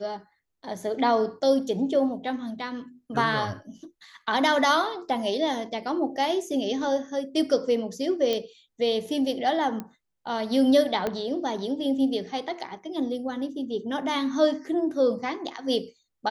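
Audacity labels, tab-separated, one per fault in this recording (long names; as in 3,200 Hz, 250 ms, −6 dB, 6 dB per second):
8.330000	8.330000	click −14 dBFS
9.800000	9.800000	click −20 dBFS
11.070000	11.070000	click −14 dBFS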